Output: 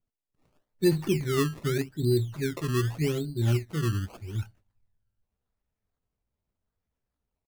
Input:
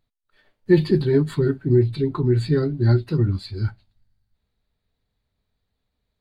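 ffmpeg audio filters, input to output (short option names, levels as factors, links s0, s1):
-af "atempo=0.83,adynamicequalizer=threshold=0.00316:dfrequency=3100:dqfactor=1.4:tfrequency=3100:tqfactor=1.4:attack=5:release=100:ratio=0.375:range=2:mode=cutabove:tftype=bell,acrusher=samples=20:mix=1:aa=0.000001:lfo=1:lforange=20:lforate=0.83,volume=0.398"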